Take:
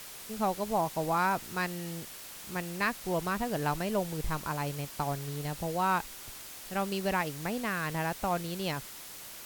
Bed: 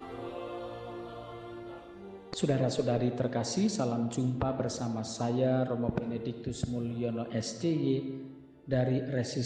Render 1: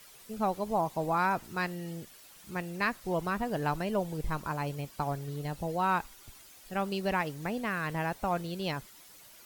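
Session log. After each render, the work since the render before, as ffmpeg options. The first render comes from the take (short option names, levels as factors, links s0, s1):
-af "afftdn=nr=11:nf=-46"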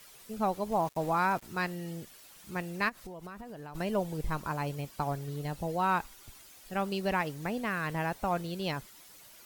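-filter_complex "[0:a]asettb=1/sr,asplit=3[s0][s1][s2];[s0]atrim=end=0.724[s3];[s1]atrim=start=0.72:end=1.43,asetpts=PTS-STARTPTS,afade=t=in:d=0.004:c=qsin,afade=t=out:st=0.706:d=0.004:c=qsin,aeval=exprs='val(0)*gte(abs(val(0)),0.00668)':c=same[s4];[s2]atrim=start=1.426[s5];[s3][s4]acrossfade=d=0.004:c1=hsin:c2=qsin[s6];[s6][s5]acrossfade=d=0.004:c1=qsin:c2=hsin,asplit=3[s7][s8][s9];[s7]afade=t=out:st=2.88:d=0.02[s10];[s8]acompressor=threshold=0.01:ratio=10:attack=3.2:release=140:knee=1:detection=peak,afade=t=in:st=2.88:d=0.02,afade=t=out:st=3.74:d=0.02[s11];[s9]afade=t=in:st=3.74:d=0.02[s12];[s10][s11][s12]amix=inputs=3:normalize=0"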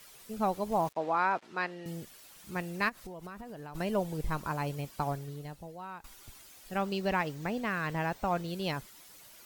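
-filter_complex "[0:a]asettb=1/sr,asplit=3[s0][s1][s2];[s0]atrim=end=0.934[s3];[s1]atrim=start=0.93:end=1.86,asetpts=PTS-STARTPTS,afade=t=in:d=0.004:c=qsin,afade=t=out:st=0.926:d=0.004:c=qsin,highpass=310,lowpass=3900[s4];[s2]atrim=start=1.856[s5];[s3][s4]acrossfade=d=0.004:c1=hsin:c2=qsin[s6];[s6][s5]acrossfade=d=0.004:c1=qsin:c2=hsin,asettb=1/sr,asplit=3[s7][s8][s9];[s7]atrim=end=6.784[s10];[s8]atrim=start=6.78:end=8.48,asetpts=PTS-STARTPTS,afade=t=in:d=0.004:c=qsin,afade=t=out:st=1.696:d=0.004:c=qsin,equalizer=f=11000:t=o:w=0.41:g=-11[s11];[s9]atrim=start=8.476[s12];[s10][s11]acrossfade=d=0.004:c1=hsin:c2=qsin[s13];[s13][s12]acrossfade=d=0.004:c1=qsin:c2=hsin,asplit=2[s14][s15];[s14]atrim=end=6.04,asetpts=PTS-STARTPTS,afade=t=out:st=5.08:d=0.96:c=qua:silence=0.141254[s16];[s15]atrim=start=6.04,asetpts=PTS-STARTPTS,afade=t=in:d=0.004:c=hsin:silence=0.141254[s17];[s16][s17]concat=n=2:v=0:a=1"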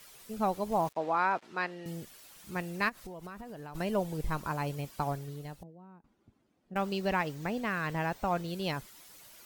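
-filter_complex "[0:a]asettb=1/sr,asplit=3[s0][s1][s2];[s0]atrim=end=5.634[s3];[s1]atrim=start=5.63:end=6.76,asetpts=PTS-STARTPTS,afade=t=in:d=0.004:c=qsin,afade=t=out:st=1.126:d=0.004:c=qsin,bandpass=f=220:t=q:w=1.5[s4];[s2]atrim=start=6.756[s5];[s3][s4]acrossfade=d=0.004:c1=hsin:c2=qsin[s6];[s6][s5]acrossfade=d=0.004:c1=qsin:c2=hsin"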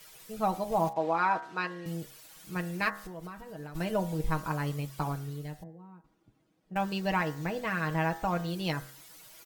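-af "aecho=1:1:6.3:0.65,bandreject=f=68.16:t=h:w=4,bandreject=f=136.32:t=h:w=4,bandreject=f=204.48:t=h:w=4,bandreject=f=272.64:t=h:w=4,bandreject=f=340.8:t=h:w=4,bandreject=f=408.96:t=h:w=4,bandreject=f=477.12:t=h:w=4,bandreject=f=545.28:t=h:w=4,bandreject=f=613.44:t=h:w=4,bandreject=f=681.6:t=h:w=4,bandreject=f=749.76:t=h:w=4,bandreject=f=817.92:t=h:w=4,bandreject=f=886.08:t=h:w=4,bandreject=f=954.24:t=h:w=4,bandreject=f=1022.4:t=h:w=4,bandreject=f=1090.56:t=h:w=4,bandreject=f=1158.72:t=h:w=4,bandreject=f=1226.88:t=h:w=4,bandreject=f=1295.04:t=h:w=4,bandreject=f=1363.2:t=h:w=4,bandreject=f=1431.36:t=h:w=4,bandreject=f=1499.52:t=h:w=4,bandreject=f=1567.68:t=h:w=4,bandreject=f=1635.84:t=h:w=4,bandreject=f=1704:t=h:w=4,bandreject=f=1772.16:t=h:w=4,bandreject=f=1840.32:t=h:w=4,bandreject=f=1908.48:t=h:w=4,bandreject=f=1976.64:t=h:w=4,bandreject=f=2044.8:t=h:w=4"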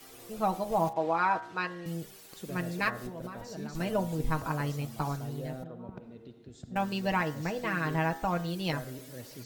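-filter_complex "[1:a]volume=0.211[s0];[0:a][s0]amix=inputs=2:normalize=0"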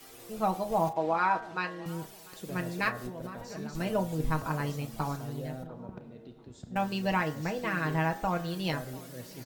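-filter_complex "[0:a]asplit=2[s0][s1];[s1]adelay=32,volume=0.224[s2];[s0][s2]amix=inputs=2:normalize=0,asplit=2[s3][s4];[s4]adelay=694,lowpass=f=1700:p=1,volume=0.0891,asplit=2[s5][s6];[s6]adelay=694,lowpass=f=1700:p=1,volume=0.34,asplit=2[s7][s8];[s8]adelay=694,lowpass=f=1700:p=1,volume=0.34[s9];[s3][s5][s7][s9]amix=inputs=4:normalize=0"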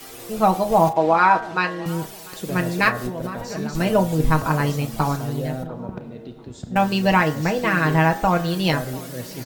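-af "volume=3.76"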